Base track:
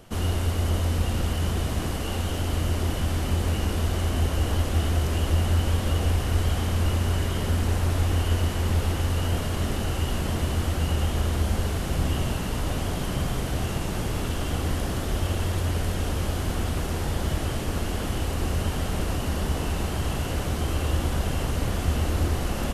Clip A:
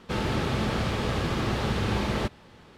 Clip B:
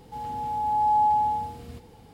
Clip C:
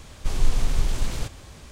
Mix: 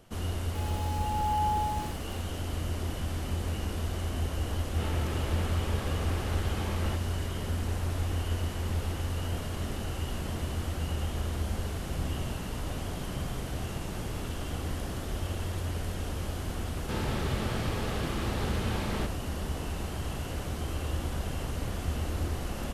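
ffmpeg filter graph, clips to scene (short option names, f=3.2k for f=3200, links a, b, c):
-filter_complex "[1:a]asplit=2[a][b];[0:a]volume=-7.5dB[c];[2:a]aeval=exprs='val(0)*gte(abs(val(0)),0.0168)':c=same[d];[a]acrossover=split=160|4400[e][f][g];[f]adelay=40[h];[g]adelay=350[i];[e][h][i]amix=inputs=3:normalize=0[j];[d]atrim=end=2.13,asetpts=PTS-STARTPTS,volume=-8dB,afade=t=in:d=0.004:c=hsin,afade=t=out:st=2.126:d=0.004:c=hsin,adelay=420[k];[j]atrim=end=2.77,asetpts=PTS-STARTPTS,volume=-9dB,afade=t=in:d=0.004:c=hsin,afade=t=out:st=2.766:d=0.004:c=hsin,adelay=205065S[l];[b]atrim=end=2.77,asetpts=PTS-STARTPTS,volume=-6.5dB,afade=t=in:d=0.004:c=hsin,afade=t=out:st=2.766:d=0.004:c=hsin,adelay=16790[m];[c][k][l][m]amix=inputs=4:normalize=0"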